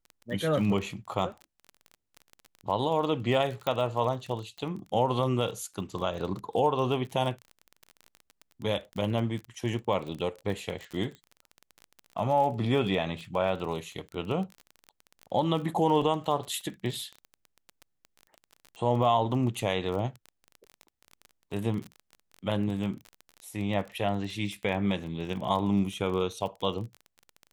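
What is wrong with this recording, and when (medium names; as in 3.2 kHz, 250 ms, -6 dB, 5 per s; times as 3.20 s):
crackle 25 per s -34 dBFS
3.67 s: pop -16 dBFS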